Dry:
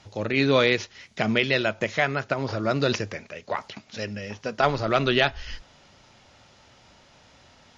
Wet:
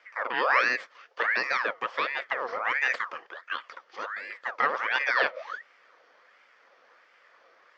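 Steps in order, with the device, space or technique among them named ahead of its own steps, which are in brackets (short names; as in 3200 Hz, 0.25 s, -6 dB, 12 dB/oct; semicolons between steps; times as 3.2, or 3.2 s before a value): voice changer toy (ring modulator with a swept carrier 1400 Hz, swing 60%, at 1.4 Hz; speaker cabinet 510–4400 Hz, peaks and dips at 520 Hz +9 dB, 810 Hz -4 dB, 1200 Hz +5 dB, 1800 Hz +5 dB, 2800 Hz -5 dB, 3900 Hz -10 dB); gain -2 dB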